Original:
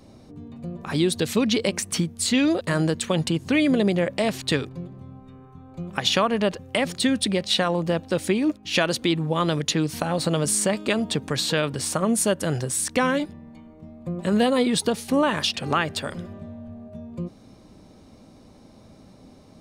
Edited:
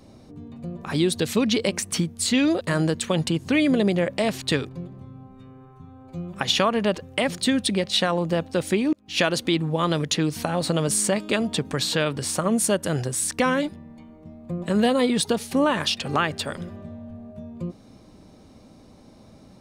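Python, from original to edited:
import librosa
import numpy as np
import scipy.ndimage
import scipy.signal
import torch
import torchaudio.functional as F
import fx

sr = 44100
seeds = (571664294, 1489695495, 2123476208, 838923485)

y = fx.edit(x, sr, fx.stretch_span(start_s=5.05, length_s=0.86, factor=1.5),
    fx.fade_in_span(start_s=8.5, length_s=0.25), tone=tone)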